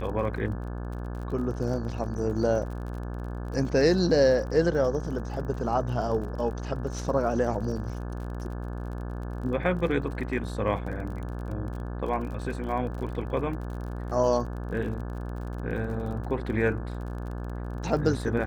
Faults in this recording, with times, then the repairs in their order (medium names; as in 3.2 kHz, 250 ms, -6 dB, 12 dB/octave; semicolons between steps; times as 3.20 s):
buzz 60 Hz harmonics 29 -34 dBFS
crackle 42 per s -37 dBFS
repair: de-click; de-hum 60 Hz, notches 29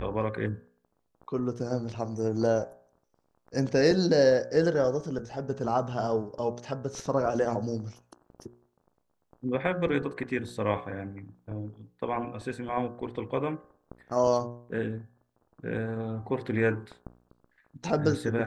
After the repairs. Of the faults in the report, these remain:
nothing left